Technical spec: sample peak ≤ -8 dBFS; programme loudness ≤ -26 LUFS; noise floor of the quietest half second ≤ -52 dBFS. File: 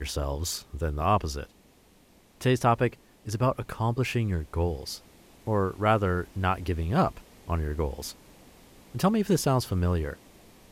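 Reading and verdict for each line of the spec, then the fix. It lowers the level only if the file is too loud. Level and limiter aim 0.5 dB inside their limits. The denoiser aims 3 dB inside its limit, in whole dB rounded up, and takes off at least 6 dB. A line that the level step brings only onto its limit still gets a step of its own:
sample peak -10.0 dBFS: pass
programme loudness -28.0 LUFS: pass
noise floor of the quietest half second -59 dBFS: pass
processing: none needed

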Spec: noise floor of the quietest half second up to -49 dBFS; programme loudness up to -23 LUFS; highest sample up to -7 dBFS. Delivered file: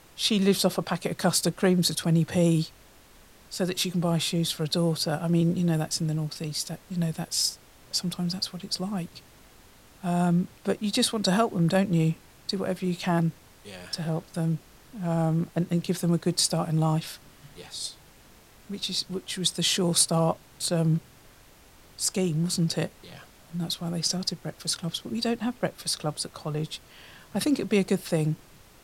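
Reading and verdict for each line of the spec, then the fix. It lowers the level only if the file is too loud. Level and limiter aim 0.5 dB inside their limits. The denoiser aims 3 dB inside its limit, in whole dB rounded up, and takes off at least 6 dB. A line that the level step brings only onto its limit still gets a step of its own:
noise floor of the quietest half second -54 dBFS: pass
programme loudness -27.0 LUFS: pass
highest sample -7.5 dBFS: pass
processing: none needed

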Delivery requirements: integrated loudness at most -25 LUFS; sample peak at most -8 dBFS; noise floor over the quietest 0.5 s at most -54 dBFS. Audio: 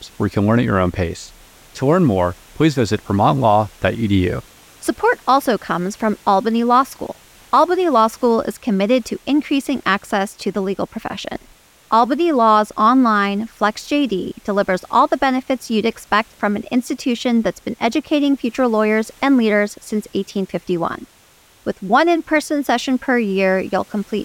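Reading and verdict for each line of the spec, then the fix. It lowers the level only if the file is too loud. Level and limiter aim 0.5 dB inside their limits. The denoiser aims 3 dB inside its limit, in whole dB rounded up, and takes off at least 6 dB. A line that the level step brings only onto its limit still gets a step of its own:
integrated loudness -18.0 LUFS: fail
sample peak -3.5 dBFS: fail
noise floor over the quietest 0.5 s -51 dBFS: fail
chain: trim -7.5 dB

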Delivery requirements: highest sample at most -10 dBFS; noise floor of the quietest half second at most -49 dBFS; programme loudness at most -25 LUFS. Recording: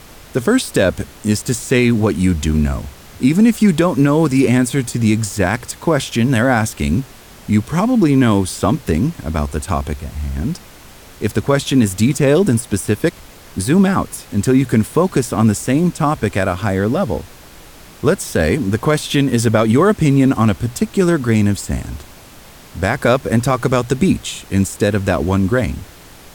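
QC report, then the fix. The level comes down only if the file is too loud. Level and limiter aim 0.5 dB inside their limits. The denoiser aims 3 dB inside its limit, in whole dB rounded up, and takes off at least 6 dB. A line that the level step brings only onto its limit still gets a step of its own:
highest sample -3.5 dBFS: fail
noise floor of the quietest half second -40 dBFS: fail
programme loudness -16.5 LUFS: fail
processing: noise reduction 6 dB, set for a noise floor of -40 dBFS; trim -9 dB

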